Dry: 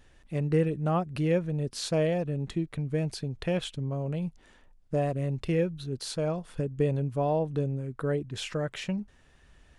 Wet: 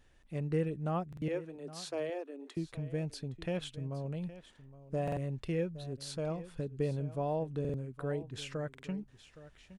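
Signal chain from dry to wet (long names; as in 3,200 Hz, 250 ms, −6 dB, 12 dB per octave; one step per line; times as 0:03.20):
0:01.28–0:02.57: Chebyshev high-pass with heavy ripple 260 Hz, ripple 3 dB
single-tap delay 816 ms −16 dB
buffer that repeats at 0:01.08/0:05.03/0:07.60/0:08.70, samples 2,048, times 2
level −7 dB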